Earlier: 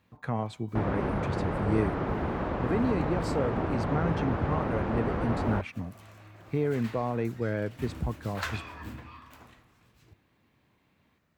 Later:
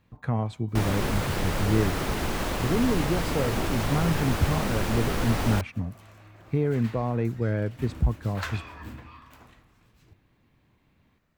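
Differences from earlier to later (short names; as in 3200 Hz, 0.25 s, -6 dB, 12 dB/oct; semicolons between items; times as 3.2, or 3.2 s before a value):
speech: add low shelf 180 Hz +9 dB; first sound: remove LPF 1300 Hz 12 dB/oct; master: remove HPF 60 Hz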